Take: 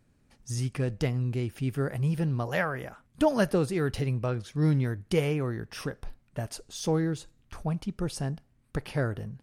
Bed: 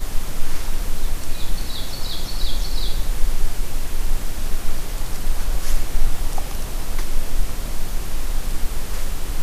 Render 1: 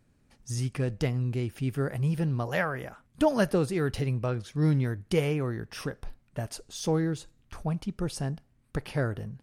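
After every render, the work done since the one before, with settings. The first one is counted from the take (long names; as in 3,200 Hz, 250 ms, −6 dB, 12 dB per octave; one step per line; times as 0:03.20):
no processing that can be heard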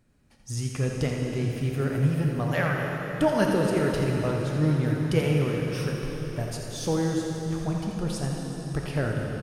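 single-tap delay 85 ms −8.5 dB
dense smooth reverb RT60 4.8 s, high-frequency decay 0.9×, DRR 0 dB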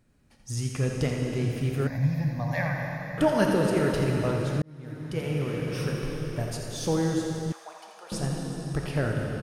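0:01.87–0:03.18: phaser with its sweep stopped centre 2,000 Hz, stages 8
0:04.62–0:05.96: fade in
0:07.52–0:08.12: four-pole ladder high-pass 580 Hz, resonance 25%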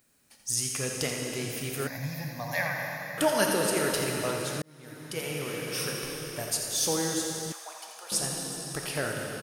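RIAA equalisation recording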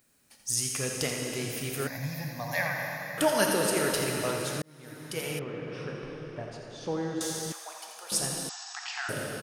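0:05.39–0:07.21: head-to-tape spacing loss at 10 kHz 38 dB
0:08.49–0:09.09: linear-phase brick-wall band-pass 690–8,100 Hz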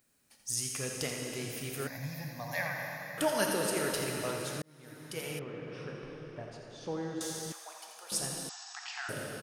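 level −5 dB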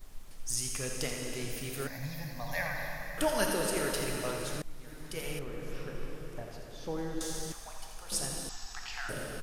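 mix in bed −25 dB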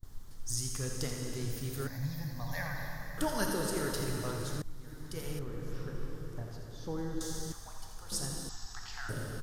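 noise gate with hold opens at −40 dBFS
graphic EQ with 15 bands 100 Hz +11 dB, 630 Hz −7 dB, 2,500 Hz −12 dB, 10,000 Hz −5 dB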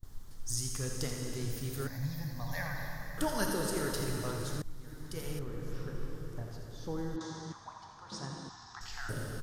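0:07.16–0:08.81: loudspeaker in its box 120–5,200 Hz, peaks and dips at 470 Hz −5 dB, 1,000 Hz +10 dB, 2,900 Hz −6 dB, 4,700 Hz −4 dB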